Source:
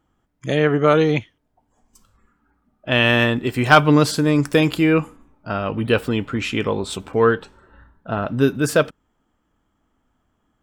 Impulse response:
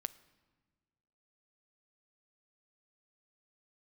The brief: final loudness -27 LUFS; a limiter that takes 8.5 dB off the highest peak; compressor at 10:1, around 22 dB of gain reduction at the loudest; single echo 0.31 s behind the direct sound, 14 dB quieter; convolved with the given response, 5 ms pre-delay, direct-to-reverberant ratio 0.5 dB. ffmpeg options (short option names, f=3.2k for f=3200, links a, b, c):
-filter_complex "[0:a]acompressor=threshold=-29dB:ratio=10,alimiter=limit=-24dB:level=0:latency=1,aecho=1:1:310:0.2,asplit=2[a][b];[1:a]atrim=start_sample=2205,adelay=5[c];[b][c]afir=irnorm=-1:irlink=0,volume=1dB[d];[a][d]amix=inputs=2:normalize=0,volume=6dB"